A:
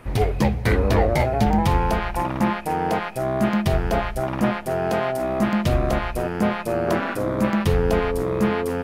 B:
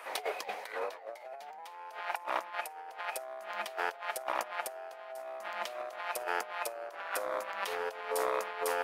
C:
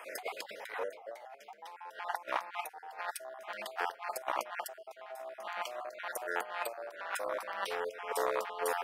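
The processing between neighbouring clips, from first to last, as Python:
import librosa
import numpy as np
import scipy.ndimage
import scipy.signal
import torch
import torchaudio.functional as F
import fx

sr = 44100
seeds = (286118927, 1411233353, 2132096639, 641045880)

y1 = scipy.signal.sosfilt(scipy.signal.butter(4, 600.0, 'highpass', fs=sr, output='sos'), x)
y1 = fx.over_compress(y1, sr, threshold_db=-33.0, ratio=-0.5)
y1 = y1 * librosa.db_to_amplitude(-4.0)
y2 = fx.spec_dropout(y1, sr, seeds[0], share_pct=32)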